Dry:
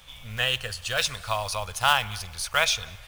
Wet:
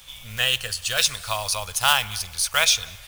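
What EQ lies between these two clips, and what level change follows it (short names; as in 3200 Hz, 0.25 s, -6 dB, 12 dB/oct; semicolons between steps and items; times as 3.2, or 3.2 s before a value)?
high shelf 3300 Hz +11.5 dB; -1.0 dB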